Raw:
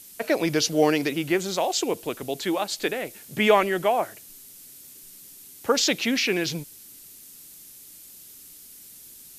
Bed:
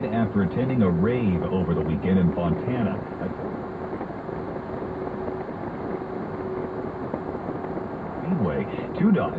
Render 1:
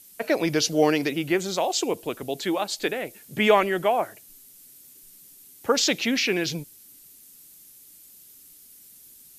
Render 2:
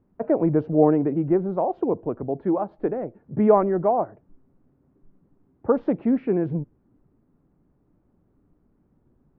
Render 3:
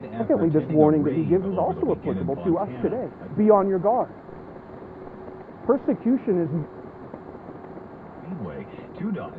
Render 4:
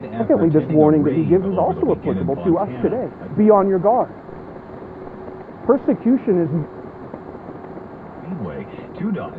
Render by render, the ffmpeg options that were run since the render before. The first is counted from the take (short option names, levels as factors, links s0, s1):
-af "afftdn=nr=6:nf=-47"
-af "lowpass=f=1100:w=0.5412,lowpass=f=1100:w=1.3066,lowshelf=f=290:g=9"
-filter_complex "[1:a]volume=0.355[s0];[0:a][s0]amix=inputs=2:normalize=0"
-af "volume=1.88,alimiter=limit=0.794:level=0:latency=1"